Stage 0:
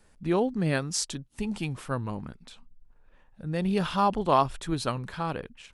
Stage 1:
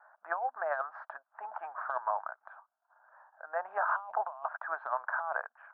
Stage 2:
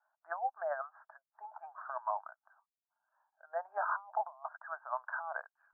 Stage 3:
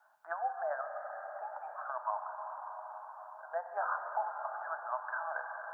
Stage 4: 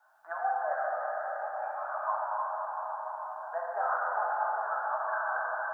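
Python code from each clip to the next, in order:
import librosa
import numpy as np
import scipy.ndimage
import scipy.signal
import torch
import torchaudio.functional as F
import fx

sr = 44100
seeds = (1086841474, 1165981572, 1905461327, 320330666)

y1 = scipy.signal.sosfilt(scipy.signal.cheby1(4, 1.0, [640.0, 1600.0], 'bandpass', fs=sr, output='sos'), x)
y1 = fx.over_compress(y1, sr, threshold_db=-40.0, ratio=-1.0)
y1 = y1 * 10.0 ** (5.0 / 20.0)
y2 = fx.low_shelf(y1, sr, hz=180.0, db=5.0)
y2 = fx.spectral_expand(y2, sr, expansion=1.5)
y2 = y2 * 10.0 ** (-4.0 / 20.0)
y3 = fx.rev_plate(y2, sr, seeds[0], rt60_s=5.0, hf_ratio=0.95, predelay_ms=0, drr_db=4.0)
y3 = fx.band_squash(y3, sr, depth_pct=40)
y4 = fx.rev_plate(y3, sr, seeds[1], rt60_s=4.5, hf_ratio=0.9, predelay_ms=0, drr_db=-5.0)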